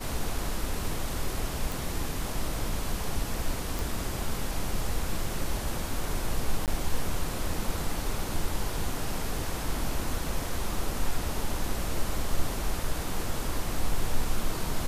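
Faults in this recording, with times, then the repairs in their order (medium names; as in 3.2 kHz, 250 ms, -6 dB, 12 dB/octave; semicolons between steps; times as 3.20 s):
1.72 s: pop
3.79 s: pop
6.66–6.68 s: dropout 18 ms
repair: de-click; interpolate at 6.66 s, 18 ms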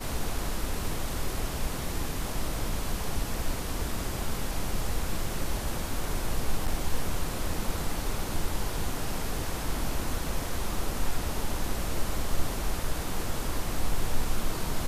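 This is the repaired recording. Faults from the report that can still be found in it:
nothing left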